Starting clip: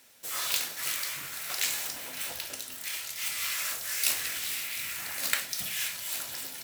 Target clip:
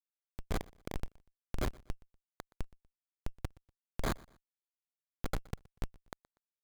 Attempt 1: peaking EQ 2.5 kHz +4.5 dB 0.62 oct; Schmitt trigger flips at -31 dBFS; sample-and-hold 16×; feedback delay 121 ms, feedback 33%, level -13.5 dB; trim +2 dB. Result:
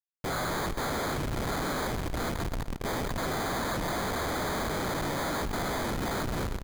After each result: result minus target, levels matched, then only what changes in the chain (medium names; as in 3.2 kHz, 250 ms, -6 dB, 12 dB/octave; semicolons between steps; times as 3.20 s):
Schmitt trigger: distortion -18 dB; echo-to-direct +10 dB
change: Schmitt trigger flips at -19.5 dBFS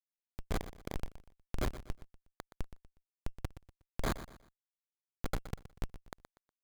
echo-to-direct +10 dB
change: feedback delay 121 ms, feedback 33%, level -23.5 dB